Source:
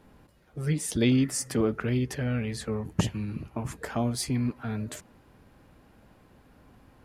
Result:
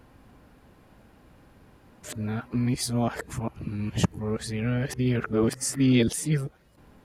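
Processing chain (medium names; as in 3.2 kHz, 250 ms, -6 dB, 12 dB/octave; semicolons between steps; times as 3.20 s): reverse the whole clip; trim +2 dB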